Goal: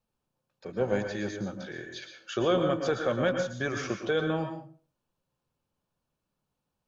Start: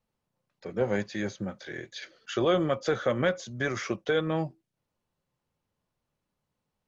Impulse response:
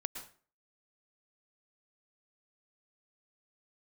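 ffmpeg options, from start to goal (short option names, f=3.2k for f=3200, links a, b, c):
-filter_complex "[0:a]bandreject=f=2k:w=6.1[a];[1:a]atrim=start_sample=2205[b];[a][b]afir=irnorm=-1:irlink=0"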